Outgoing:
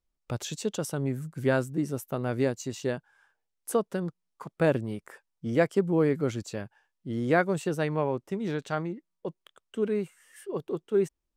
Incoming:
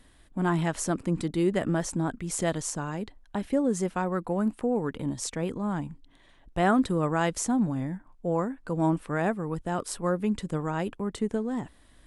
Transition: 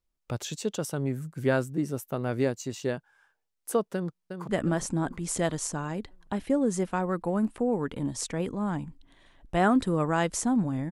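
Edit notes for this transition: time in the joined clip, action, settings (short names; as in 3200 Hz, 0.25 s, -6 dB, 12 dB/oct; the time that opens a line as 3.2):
outgoing
3.94–4.49 echo throw 0.36 s, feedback 50%, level -7.5 dB
4.49 switch to incoming from 1.52 s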